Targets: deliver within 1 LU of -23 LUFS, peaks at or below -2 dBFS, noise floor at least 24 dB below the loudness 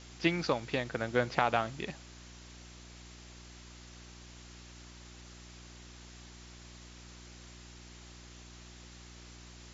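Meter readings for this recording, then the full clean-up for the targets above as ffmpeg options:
hum 60 Hz; highest harmonic 360 Hz; hum level -51 dBFS; noise floor -52 dBFS; noise floor target -57 dBFS; loudness -32.5 LUFS; peak level -8.0 dBFS; loudness target -23.0 LUFS
-> -af "bandreject=f=60:t=h:w=4,bandreject=f=120:t=h:w=4,bandreject=f=180:t=h:w=4,bandreject=f=240:t=h:w=4,bandreject=f=300:t=h:w=4,bandreject=f=360:t=h:w=4"
-af "afftdn=nr=6:nf=-52"
-af "volume=2.99,alimiter=limit=0.794:level=0:latency=1"

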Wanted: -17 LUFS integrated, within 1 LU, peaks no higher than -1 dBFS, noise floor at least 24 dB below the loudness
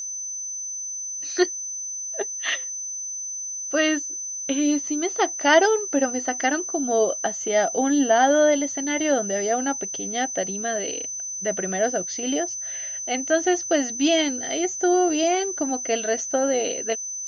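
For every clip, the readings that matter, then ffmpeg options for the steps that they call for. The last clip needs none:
steady tone 6.1 kHz; tone level -29 dBFS; loudness -23.0 LUFS; peak level -5.0 dBFS; loudness target -17.0 LUFS
-> -af "bandreject=f=6100:w=30"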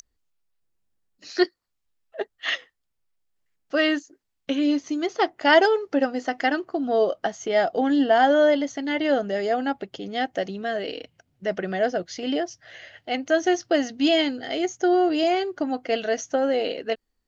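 steady tone not found; loudness -23.5 LUFS; peak level -5.5 dBFS; loudness target -17.0 LUFS
-> -af "volume=2.11,alimiter=limit=0.891:level=0:latency=1"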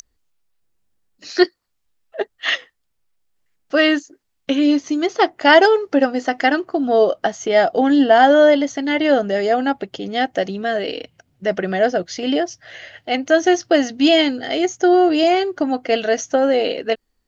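loudness -17.5 LUFS; peak level -1.0 dBFS; noise floor -70 dBFS

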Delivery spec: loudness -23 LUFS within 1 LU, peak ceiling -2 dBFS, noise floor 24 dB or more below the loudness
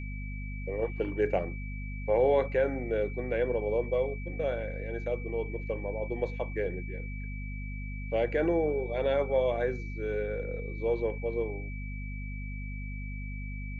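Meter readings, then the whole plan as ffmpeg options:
hum 50 Hz; highest harmonic 250 Hz; hum level -35 dBFS; steady tone 2.3 kHz; tone level -45 dBFS; loudness -32.0 LUFS; peak level -14.5 dBFS; loudness target -23.0 LUFS
-> -af "bandreject=f=50:t=h:w=6,bandreject=f=100:t=h:w=6,bandreject=f=150:t=h:w=6,bandreject=f=200:t=h:w=6,bandreject=f=250:t=h:w=6"
-af "bandreject=f=2300:w=30"
-af "volume=2.82"

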